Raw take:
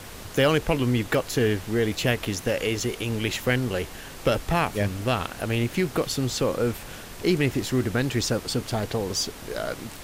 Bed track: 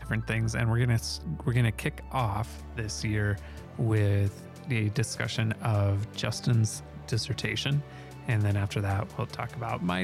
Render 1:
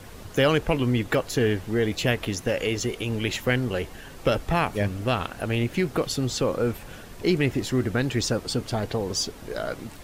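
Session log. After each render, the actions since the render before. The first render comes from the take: denoiser 7 dB, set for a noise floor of -41 dBFS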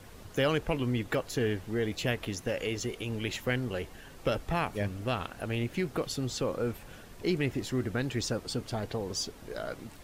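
gain -7 dB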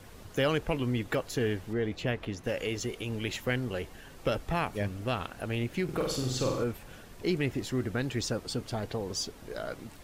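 1.73–2.44 LPF 2400 Hz 6 dB/oct; 5.84–6.64 flutter echo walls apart 8 m, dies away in 0.73 s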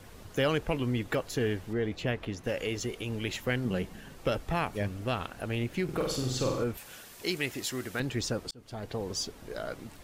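3.65–4.13 bell 190 Hz +11 dB; 6.77–8 tilt +3 dB/oct; 8.51–9.01 fade in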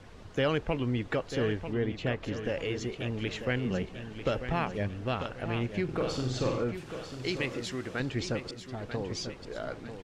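air absorption 93 m; feedback echo 0.943 s, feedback 42%, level -9.5 dB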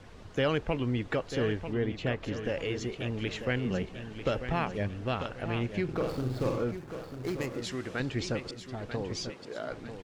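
5.93–7.62 median filter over 15 samples; 9.3–9.7 HPF 160 Hz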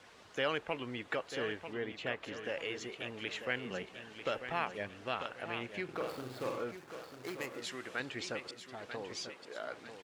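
HPF 960 Hz 6 dB/oct; dynamic EQ 5400 Hz, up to -5 dB, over -56 dBFS, Q 1.2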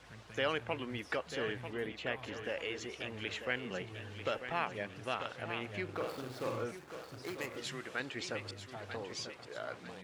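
add bed track -24.5 dB

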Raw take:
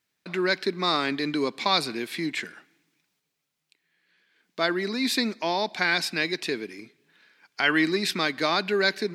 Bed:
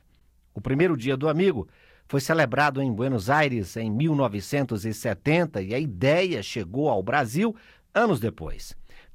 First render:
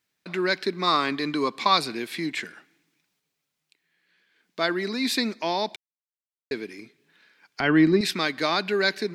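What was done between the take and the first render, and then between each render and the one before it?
0.87–1.77 bell 1100 Hz +10 dB 0.24 oct; 5.76–6.51 mute; 7.6–8.01 tilt -4 dB/oct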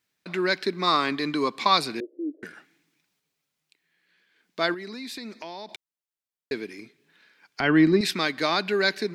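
2–2.43 Chebyshev band-pass 280–600 Hz, order 4; 4.74–5.69 compressor 5:1, threshold -35 dBFS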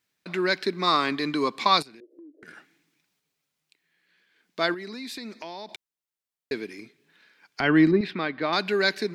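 1.82–2.48 compressor 20:1, threshold -44 dBFS; 7.91–8.53 air absorption 400 m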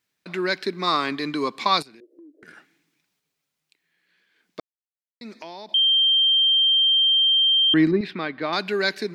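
4.6–5.21 mute; 5.74–7.74 bleep 3160 Hz -15 dBFS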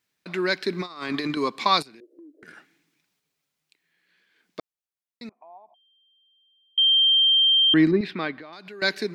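0.7–1.37 negative-ratio compressor -29 dBFS, ratio -0.5; 5.29–6.78 vocal tract filter a; 8.33–8.82 compressor 10:1, threshold -38 dBFS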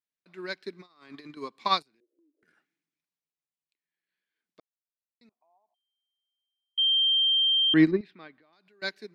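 upward expander 2.5:1, over -29 dBFS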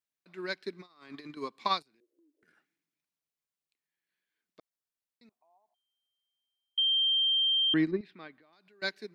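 compressor 3:1, threshold -26 dBFS, peak gain reduction 9 dB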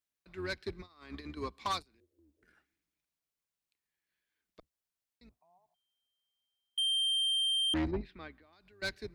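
octaver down 2 oct, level -2 dB; soft clip -28 dBFS, distortion -12 dB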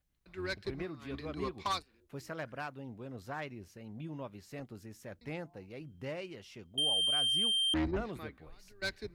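add bed -20 dB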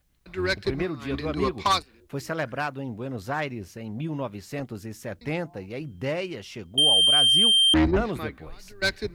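gain +12 dB

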